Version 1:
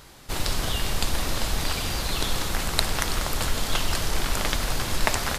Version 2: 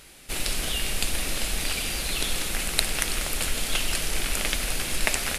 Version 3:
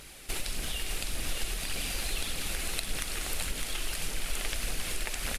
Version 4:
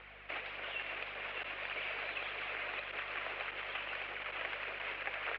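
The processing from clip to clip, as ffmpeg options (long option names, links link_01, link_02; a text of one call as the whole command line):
ffmpeg -i in.wav -af "equalizer=frequency=100:width_type=o:width=0.67:gain=-11,equalizer=frequency=1000:width_type=o:width=0.67:gain=-7,equalizer=frequency=2500:width_type=o:width=0.67:gain=7,equalizer=frequency=10000:width_type=o:width=0.67:gain=9,volume=-2.5dB" out.wav
ffmpeg -i in.wav -af "acompressor=threshold=-31dB:ratio=10,aphaser=in_gain=1:out_gain=1:delay=3:decay=0.34:speed=1.7:type=triangular,aecho=1:1:608:0.531" out.wav
ffmpeg -i in.wav -af "asoftclip=type=hard:threshold=-25dB,highpass=frequency=580:width_type=q:width=0.5412,highpass=frequency=580:width_type=q:width=1.307,lowpass=frequency=2800:width_type=q:width=0.5176,lowpass=frequency=2800:width_type=q:width=0.7071,lowpass=frequency=2800:width_type=q:width=1.932,afreqshift=-84,aeval=exprs='val(0)+0.000631*(sin(2*PI*50*n/s)+sin(2*PI*2*50*n/s)/2+sin(2*PI*3*50*n/s)/3+sin(2*PI*4*50*n/s)/4+sin(2*PI*5*50*n/s)/5)':channel_layout=same,volume=1.5dB" out.wav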